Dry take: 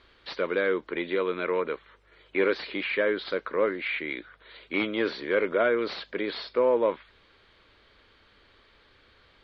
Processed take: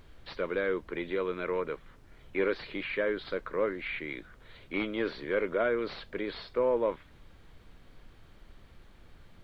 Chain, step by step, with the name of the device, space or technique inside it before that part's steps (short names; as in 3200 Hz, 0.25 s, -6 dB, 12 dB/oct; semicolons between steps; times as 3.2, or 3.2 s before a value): car interior (bell 140 Hz +8 dB 0.58 oct; high shelf 3600 Hz -5.5 dB; brown noise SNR 18 dB); gain -4.5 dB